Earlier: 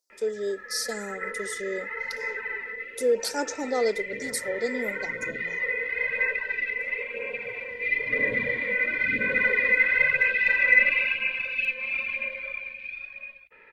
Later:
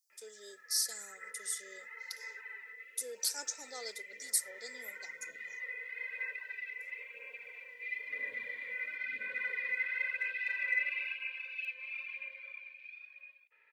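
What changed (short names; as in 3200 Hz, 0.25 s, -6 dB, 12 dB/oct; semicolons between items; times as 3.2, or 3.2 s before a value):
background: add high shelf 3600 Hz -12 dB; master: add differentiator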